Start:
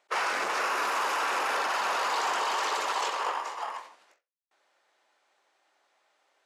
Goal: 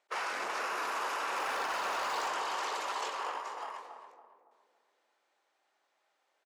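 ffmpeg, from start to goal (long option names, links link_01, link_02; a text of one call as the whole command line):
ffmpeg -i in.wav -filter_complex "[0:a]asettb=1/sr,asplit=3[link_01][link_02][link_03];[link_01]atrim=end=1.364[link_04];[link_02]atrim=start=1.36:end=2.28,asetpts=PTS-STARTPTS,afade=type=in:duration=0.004:curve=qsin,afade=type=out:start_time=0.916:duration=0.004:curve=qsin,aeval=exprs='val(0)+0.5*0.0112*sgn(val(0))':channel_layout=same[link_05];[link_03]atrim=start=2.276[link_06];[link_04][link_05]acrossfade=duration=0.004:curve1=hsin:curve2=qsin[link_07];[link_07][link_06]acrossfade=duration=0.004:curve1=qsin:curve2=hsin,asplit=2[link_08][link_09];[link_09]adelay=280,lowpass=frequency=850:poles=1,volume=-4.5dB,asplit=2[link_10][link_11];[link_11]adelay=280,lowpass=frequency=850:poles=1,volume=0.52,asplit=2[link_12][link_13];[link_13]adelay=280,lowpass=frequency=850:poles=1,volume=0.52,asplit=2[link_14][link_15];[link_15]adelay=280,lowpass=frequency=850:poles=1,volume=0.52,asplit=2[link_16][link_17];[link_17]adelay=280,lowpass=frequency=850:poles=1,volume=0.52,asplit=2[link_18][link_19];[link_19]adelay=280,lowpass=frequency=850:poles=1,volume=0.52,asplit=2[link_20][link_21];[link_21]adelay=280,lowpass=frequency=850:poles=1,volume=0.52[link_22];[link_08][link_10][link_12][link_14][link_16][link_18][link_20][link_22]amix=inputs=8:normalize=0,volume=-7dB" out.wav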